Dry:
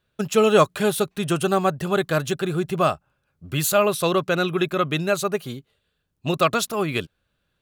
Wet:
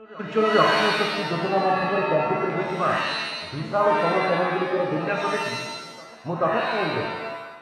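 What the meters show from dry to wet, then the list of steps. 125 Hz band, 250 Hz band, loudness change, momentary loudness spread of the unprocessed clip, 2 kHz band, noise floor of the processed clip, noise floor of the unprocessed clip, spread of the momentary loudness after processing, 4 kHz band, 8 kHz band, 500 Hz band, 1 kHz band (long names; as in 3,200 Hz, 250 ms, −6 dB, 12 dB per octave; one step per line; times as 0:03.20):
−5.0 dB, −3.5 dB, −1.0 dB, 11 LU, +3.0 dB, −42 dBFS, −74 dBFS, 11 LU, +1.0 dB, −13.5 dB, −1.5 dB, +2.5 dB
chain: auto-filter low-pass saw down 0.4 Hz 450–2,300 Hz
backwards echo 436 ms −23.5 dB
reverb with rising layers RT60 1.1 s, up +7 semitones, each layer −2 dB, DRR 0 dB
level −7 dB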